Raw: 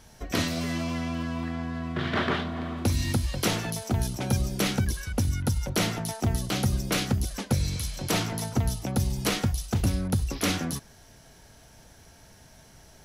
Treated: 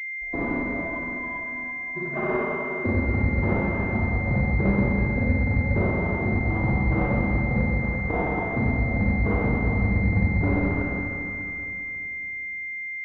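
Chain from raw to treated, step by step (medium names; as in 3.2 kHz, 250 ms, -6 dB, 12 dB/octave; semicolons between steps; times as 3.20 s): expander on every frequency bin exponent 3; compression, threshold -33 dBFS, peak gain reduction 9.5 dB; Schroeder reverb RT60 3.2 s, combs from 31 ms, DRR -9.5 dB; class-D stage that switches slowly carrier 2.1 kHz; trim +7.5 dB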